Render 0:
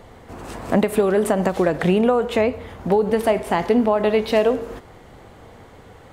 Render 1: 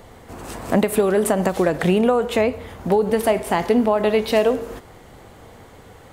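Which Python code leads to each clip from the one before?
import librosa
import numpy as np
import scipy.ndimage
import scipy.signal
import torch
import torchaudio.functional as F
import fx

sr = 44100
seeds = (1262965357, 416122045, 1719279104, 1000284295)

y = fx.high_shelf(x, sr, hz=6500.0, db=8.5)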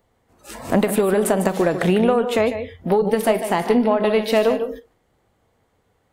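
y = x + 10.0 ** (-10.0 / 20.0) * np.pad(x, (int(149 * sr / 1000.0), 0))[:len(x)]
y = fx.noise_reduce_blind(y, sr, reduce_db=21)
y = fx.cheby_harmonics(y, sr, harmonics=(4,), levels_db=(-27,), full_scale_db=-4.5)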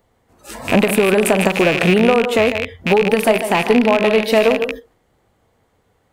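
y = fx.rattle_buzz(x, sr, strikes_db=-33.0, level_db=-11.0)
y = F.gain(torch.from_numpy(y), 3.5).numpy()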